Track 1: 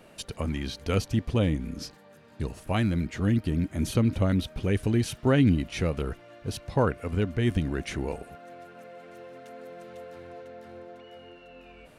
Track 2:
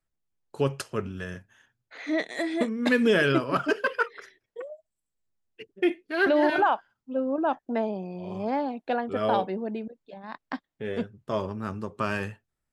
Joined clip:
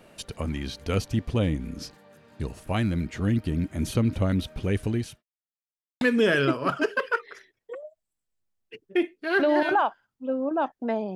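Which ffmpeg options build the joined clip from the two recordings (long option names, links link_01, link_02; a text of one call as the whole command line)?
ffmpeg -i cue0.wav -i cue1.wav -filter_complex "[0:a]apad=whole_dur=11.15,atrim=end=11.15,asplit=2[link_01][link_02];[link_01]atrim=end=5.23,asetpts=PTS-STARTPTS,afade=type=out:start_time=4.7:duration=0.53:curve=qsin[link_03];[link_02]atrim=start=5.23:end=6.01,asetpts=PTS-STARTPTS,volume=0[link_04];[1:a]atrim=start=2.88:end=8.02,asetpts=PTS-STARTPTS,afade=type=in:duration=0.004:curve=hsin[link_05];[link_03][link_04][link_05]concat=n=3:v=0:a=1" out.wav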